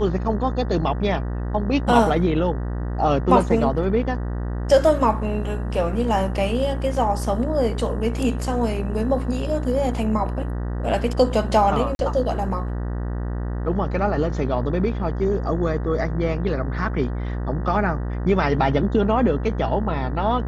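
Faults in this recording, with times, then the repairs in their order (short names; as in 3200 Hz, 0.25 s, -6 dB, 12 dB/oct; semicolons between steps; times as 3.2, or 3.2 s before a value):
buzz 60 Hz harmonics 32 -26 dBFS
11.95–11.99 gap 41 ms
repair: de-hum 60 Hz, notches 32; interpolate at 11.95, 41 ms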